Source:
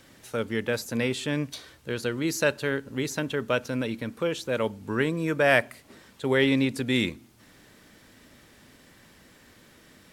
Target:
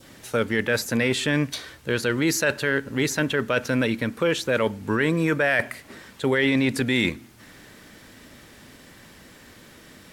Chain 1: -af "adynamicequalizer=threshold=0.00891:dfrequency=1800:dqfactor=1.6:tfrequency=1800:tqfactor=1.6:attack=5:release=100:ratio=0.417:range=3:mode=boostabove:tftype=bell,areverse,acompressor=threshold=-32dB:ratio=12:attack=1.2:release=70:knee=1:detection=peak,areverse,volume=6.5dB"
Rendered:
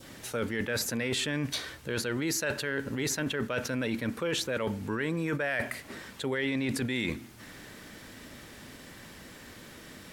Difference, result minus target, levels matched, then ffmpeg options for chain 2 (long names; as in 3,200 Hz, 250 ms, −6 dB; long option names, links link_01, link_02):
downward compressor: peak gain reduction +9.5 dB
-af "adynamicequalizer=threshold=0.00891:dfrequency=1800:dqfactor=1.6:tfrequency=1800:tqfactor=1.6:attack=5:release=100:ratio=0.417:range=3:mode=boostabove:tftype=bell,areverse,acompressor=threshold=-21.5dB:ratio=12:attack=1.2:release=70:knee=1:detection=peak,areverse,volume=6.5dB"